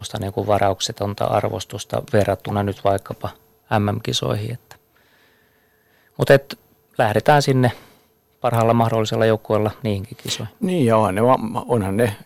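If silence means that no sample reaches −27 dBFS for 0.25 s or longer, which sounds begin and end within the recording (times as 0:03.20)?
0:03.71–0:04.71
0:06.19–0:06.53
0:06.99–0:07.72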